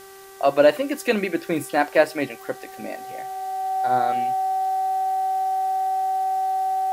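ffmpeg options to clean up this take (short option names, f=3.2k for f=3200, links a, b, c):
-af "adeclick=t=4,bandreject=f=388.8:t=h:w=4,bandreject=f=777.6:t=h:w=4,bandreject=f=1.1664k:t=h:w=4,bandreject=f=1.5552k:t=h:w=4,bandreject=f=1.944k:t=h:w=4,bandreject=f=760:w=30,afwtdn=0.004"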